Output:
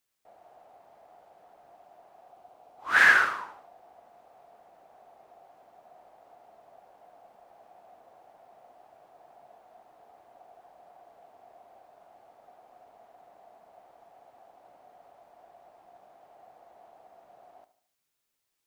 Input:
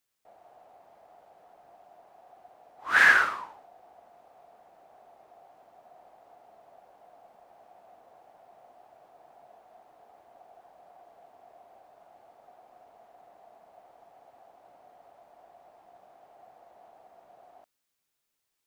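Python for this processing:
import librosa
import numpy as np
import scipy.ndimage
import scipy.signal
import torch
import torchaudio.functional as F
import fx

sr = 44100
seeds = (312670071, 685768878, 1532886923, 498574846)

y = fx.peak_eq(x, sr, hz=1800.0, db=-6.5, octaves=0.38, at=(2.28, 2.88))
y = fx.echo_feedback(y, sr, ms=74, feedback_pct=46, wet_db=-15.0)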